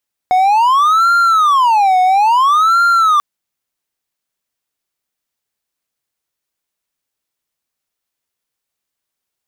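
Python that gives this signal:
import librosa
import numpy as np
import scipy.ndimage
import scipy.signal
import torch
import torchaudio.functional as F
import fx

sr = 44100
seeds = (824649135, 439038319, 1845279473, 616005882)

y = fx.siren(sr, length_s=2.89, kind='wail', low_hz=736.0, high_hz=1390.0, per_s=0.59, wave='triangle', level_db=-6.0)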